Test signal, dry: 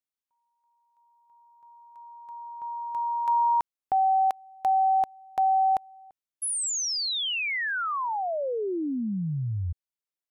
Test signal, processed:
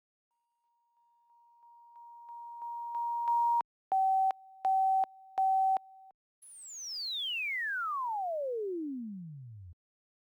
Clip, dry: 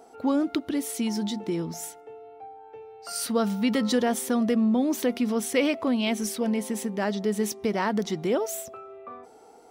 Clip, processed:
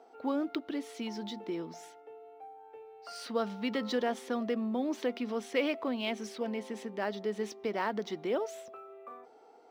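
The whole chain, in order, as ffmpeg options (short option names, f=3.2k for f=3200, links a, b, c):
-filter_complex "[0:a]acrossover=split=250 5200:gain=0.178 1 0.0794[a][b][c];[a][b][c]amix=inputs=3:normalize=0,volume=-5.5dB" -ar 44100 -c:a adpcm_ima_wav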